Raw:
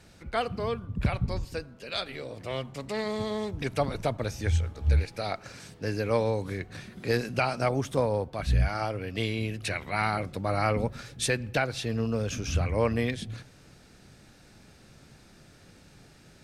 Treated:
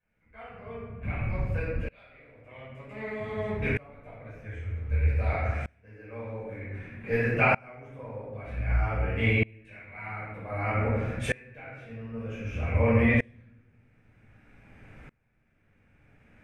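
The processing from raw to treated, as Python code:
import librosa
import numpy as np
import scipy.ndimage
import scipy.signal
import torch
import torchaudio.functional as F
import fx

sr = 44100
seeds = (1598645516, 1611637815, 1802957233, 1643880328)

y = fx.high_shelf_res(x, sr, hz=3100.0, db=-11.5, q=3.0)
y = fx.room_shoebox(y, sr, seeds[0], volume_m3=430.0, walls='mixed', distance_m=5.4)
y = fx.tremolo_decay(y, sr, direction='swelling', hz=0.53, depth_db=28)
y = y * librosa.db_to_amplitude(-8.0)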